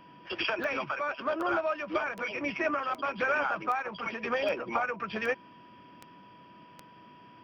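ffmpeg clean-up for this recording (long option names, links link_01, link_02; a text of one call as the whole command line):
ffmpeg -i in.wav -af "adeclick=threshold=4,bandreject=frequency=980:width=30" out.wav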